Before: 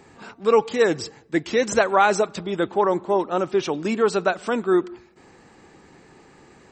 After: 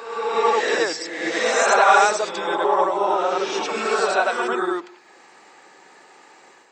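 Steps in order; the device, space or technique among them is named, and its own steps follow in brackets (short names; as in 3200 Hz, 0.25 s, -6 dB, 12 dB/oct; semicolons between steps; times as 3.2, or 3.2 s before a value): ghost voice (reverse; reverb RT60 1.2 s, pre-delay 68 ms, DRR -4.5 dB; reverse; HPF 600 Hz 12 dB/oct)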